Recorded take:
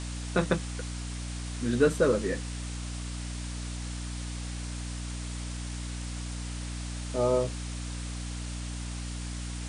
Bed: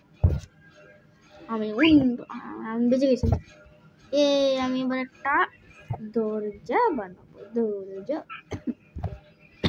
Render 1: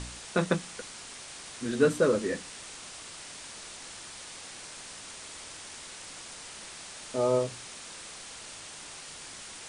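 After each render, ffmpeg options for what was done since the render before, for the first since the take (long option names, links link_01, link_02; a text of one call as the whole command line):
ffmpeg -i in.wav -af "bandreject=frequency=60:width_type=h:width=4,bandreject=frequency=120:width_type=h:width=4,bandreject=frequency=180:width_type=h:width=4,bandreject=frequency=240:width_type=h:width=4,bandreject=frequency=300:width_type=h:width=4" out.wav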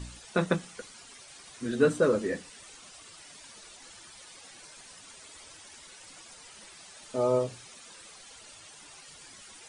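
ffmpeg -i in.wav -af "afftdn=noise_reduction=11:noise_floor=-45" out.wav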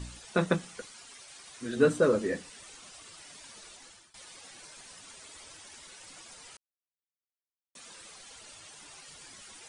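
ffmpeg -i in.wav -filter_complex "[0:a]asettb=1/sr,asplit=3[link_01][link_02][link_03];[link_01]atrim=end=0.854[link_04];[link_02]atrim=start=0.85:end=1.77,asetpts=PTS-STARTPTS,afade=type=in:duration=0.004:curve=qsin,afade=type=out:start_time=0.916:duration=0.004:curve=qsin,lowshelf=frequency=440:gain=-5.5[link_05];[link_03]atrim=start=1.766[link_06];[link_04][link_05]acrossfade=duration=0.004:curve1=hsin:curve2=qsin[link_07];[link_07][link_06]acrossfade=duration=0.004:curve1=qsin:curve2=hsin,asplit=4[link_08][link_09][link_10][link_11];[link_08]atrim=end=4.14,asetpts=PTS-STARTPTS,afade=type=out:start_time=3.61:duration=0.53:curve=qsin:silence=0.1[link_12];[link_09]atrim=start=4.14:end=6.57,asetpts=PTS-STARTPTS,afade=type=in:duration=0.004:curve=hsin:silence=0.1,afade=type=out:start_time=2.426:duration=0.004:curve=hsin[link_13];[link_10]atrim=start=6.57:end=7.75,asetpts=PTS-STARTPTS,volume=0[link_14];[link_11]atrim=start=7.75,asetpts=PTS-STARTPTS,afade=type=in:duration=0.004:curve=hsin[link_15];[link_12][link_13][link_14][link_15]concat=n=4:v=0:a=1" out.wav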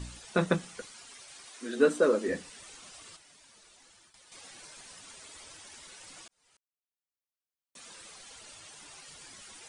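ffmpeg -i in.wav -filter_complex "[0:a]asettb=1/sr,asplit=3[link_01][link_02][link_03];[link_01]atrim=end=1.474[link_04];[link_02]atrim=start=1.47:end=2.28,asetpts=PTS-STARTPTS,afade=type=in:duration=0.004:curve=qsin,afade=type=out:start_time=0.806:duration=0.004:curve=qsin,highpass=frequency=230:width=0.5412,highpass=frequency=230:width=1.3066[link_05];[link_03]atrim=start=2.276[link_06];[link_04][link_05]acrossfade=duration=0.004:curve1=hsin:curve2=qsin[link_07];[link_07][link_06]acrossfade=duration=0.004:curve1=qsin:curve2=hsin,asettb=1/sr,asplit=3[link_08][link_09][link_10];[link_08]atrim=end=3.164[link_11];[link_09]atrim=start=3.16:end=4.32,asetpts=PTS-STARTPTS,afade=type=in:duration=0.004:curve=qsin,afade=type=out:start_time=1.156:duration=0.004:curve=qsin,acompressor=threshold=-55dB:ratio=6:attack=3.2:release=140:knee=1:detection=peak[link_12];[link_10]atrim=start=4.316[link_13];[link_11][link_12]acrossfade=duration=0.004:curve1=hsin:curve2=qsin[link_14];[link_14][link_13]acrossfade=duration=0.004:curve1=qsin:curve2=hsin,asplit=2[link_15][link_16];[link_15]atrim=end=6.28,asetpts=PTS-STARTPTS,afade=type=out:start_time=6.276:duration=0.004:curve=hsin[link_17];[link_16]atrim=start=6.28,asetpts=PTS-STARTPTS,afade=type=in:duration=1.56[link_18];[link_17][link_18]concat=n=2:v=0:a=1" out.wav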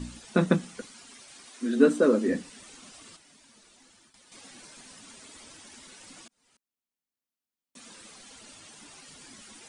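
ffmpeg -i in.wav -af "equalizer=frequency=240:width_type=o:width=0.77:gain=12.5" out.wav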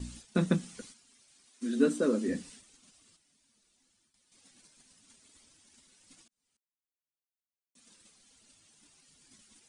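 ffmpeg -i in.wav -af "agate=range=-11dB:threshold=-47dB:ratio=16:detection=peak,equalizer=frequency=860:width=0.31:gain=-9" out.wav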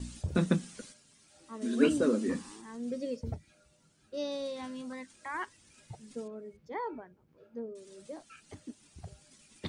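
ffmpeg -i in.wav -i bed.wav -filter_complex "[1:a]volume=-15dB[link_01];[0:a][link_01]amix=inputs=2:normalize=0" out.wav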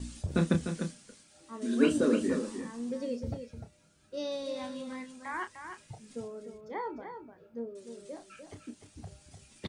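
ffmpeg -i in.wav -filter_complex "[0:a]asplit=2[link_01][link_02];[link_02]adelay=30,volume=-9dB[link_03];[link_01][link_03]amix=inputs=2:normalize=0,aecho=1:1:300:0.398" out.wav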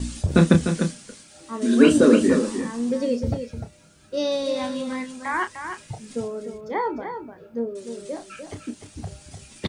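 ffmpeg -i in.wav -af "volume=11.5dB,alimiter=limit=-2dB:level=0:latency=1" out.wav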